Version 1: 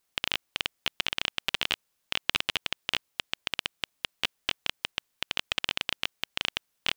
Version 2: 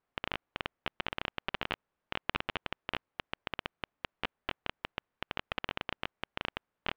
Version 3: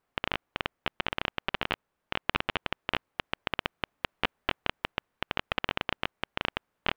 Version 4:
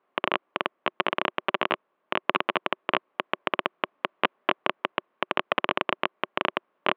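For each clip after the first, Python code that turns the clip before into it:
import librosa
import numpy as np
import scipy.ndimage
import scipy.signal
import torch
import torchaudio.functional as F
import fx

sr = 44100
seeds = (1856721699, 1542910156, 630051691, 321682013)

y1 = scipy.signal.sosfilt(scipy.signal.butter(2, 1500.0, 'lowpass', fs=sr, output='sos'), x)
y1 = y1 * 10.0 ** (1.0 / 20.0)
y2 = fx.rider(y1, sr, range_db=10, speed_s=2.0)
y2 = y2 * 10.0 ** (5.5 / 20.0)
y3 = fx.cabinet(y2, sr, low_hz=190.0, low_slope=24, high_hz=3300.0, hz=(370.0, 600.0, 1100.0), db=(7, 7, 8))
y3 = y3 * 10.0 ** (3.5 / 20.0)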